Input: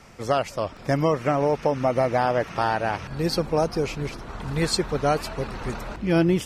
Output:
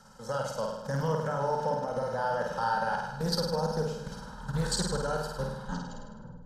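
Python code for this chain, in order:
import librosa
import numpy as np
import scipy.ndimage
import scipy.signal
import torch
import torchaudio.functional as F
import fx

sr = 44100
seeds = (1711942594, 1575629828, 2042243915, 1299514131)

p1 = fx.tape_stop_end(x, sr, length_s=1.02)
p2 = fx.high_shelf(p1, sr, hz=11000.0, db=-3.0)
p3 = fx.hum_notches(p2, sr, base_hz=50, count=5)
p4 = p3 + 0.75 * np.pad(p3, (int(1.3 * sr / 1000.0), 0))[:len(p3)]
p5 = fx.level_steps(p4, sr, step_db=13)
p6 = fx.low_shelf(p5, sr, hz=77.0, db=-7.0)
p7 = fx.fixed_phaser(p6, sr, hz=460.0, stages=8)
p8 = p7 + fx.room_flutter(p7, sr, wall_m=8.8, rt60_s=0.9, dry=0)
y = fx.doppler_dist(p8, sr, depth_ms=0.15)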